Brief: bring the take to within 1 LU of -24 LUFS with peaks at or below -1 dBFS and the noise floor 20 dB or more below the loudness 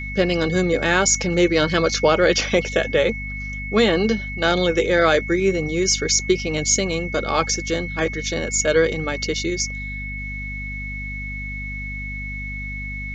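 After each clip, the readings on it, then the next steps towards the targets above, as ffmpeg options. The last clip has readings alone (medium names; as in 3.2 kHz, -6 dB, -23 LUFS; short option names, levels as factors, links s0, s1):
hum 50 Hz; highest harmonic 250 Hz; hum level -29 dBFS; steady tone 2.2 kHz; tone level -30 dBFS; loudness -20.5 LUFS; peak level -3.5 dBFS; loudness target -24.0 LUFS
-> -af "bandreject=f=50:t=h:w=4,bandreject=f=100:t=h:w=4,bandreject=f=150:t=h:w=4,bandreject=f=200:t=h:w=4,bandreject=f=250:t=h:w=4"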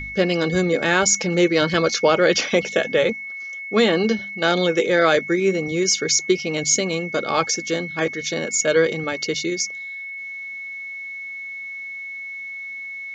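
hum not found; steady tone 2.2 kHz; tone level -30 dBFS
-> -af "bandreject=f=2200:w=30"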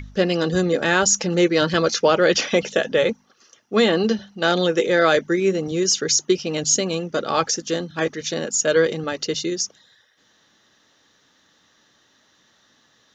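steady tone not found; loudness -20.0 LUFS; peak level -4.0 dBFS; loudness target -24.0 LUFS
-> -af "volume=0.631"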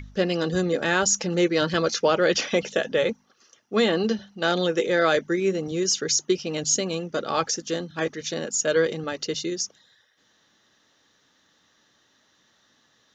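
loudness -24.0 LUFS; peak level -8.0 dBFS; noise floor -65 dBFS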